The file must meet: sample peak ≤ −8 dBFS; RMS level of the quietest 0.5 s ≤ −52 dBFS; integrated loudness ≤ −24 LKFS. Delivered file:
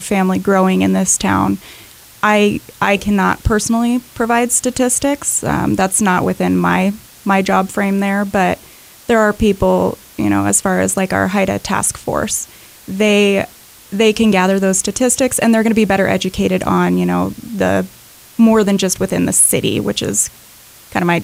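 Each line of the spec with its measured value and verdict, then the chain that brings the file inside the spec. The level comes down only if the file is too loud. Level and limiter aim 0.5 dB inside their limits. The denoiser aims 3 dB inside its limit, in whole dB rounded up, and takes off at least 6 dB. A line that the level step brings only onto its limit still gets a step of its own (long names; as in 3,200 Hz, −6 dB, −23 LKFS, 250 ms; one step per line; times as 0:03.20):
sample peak −1.5 dBFS: out of spec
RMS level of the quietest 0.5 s −42 dBFS: out of spec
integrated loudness −14.5 LKFS: out of spec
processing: broadband denoise 6 dB, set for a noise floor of −42 dBFS
level −10 dB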